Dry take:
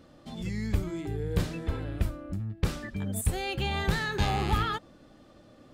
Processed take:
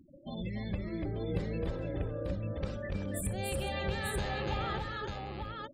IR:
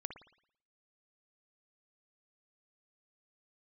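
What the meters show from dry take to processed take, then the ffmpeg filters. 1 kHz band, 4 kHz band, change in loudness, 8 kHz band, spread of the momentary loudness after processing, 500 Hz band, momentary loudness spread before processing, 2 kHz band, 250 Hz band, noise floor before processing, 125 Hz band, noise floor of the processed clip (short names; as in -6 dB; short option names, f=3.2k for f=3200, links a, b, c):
-5.5 dB, -6.0 dB, -5.0 dB, -4.0 dB, 5 LU, -0.5 dB, 8 LU, -5.0 dB, -4.0 dB, -56 dBFS, -5.5 dB, -52 dBFS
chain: -filter_complex "[0:a]afftfilt=real='re*gte(hypot(re,im),0.00891)':imag='im*gte(hypot(re,im),0.00891)':win_size=1024:overlap=0.75,equalizer=f=550:t=o:w=0.22:g=15,acompressor=threshold=-35dB:ratio=4,asplit=2[a][b];[b]aecho=0:1:64|289|420|891:0.133|0.668|0.188|0.631[c];[a][c]amix=inputs=2:normalize=0"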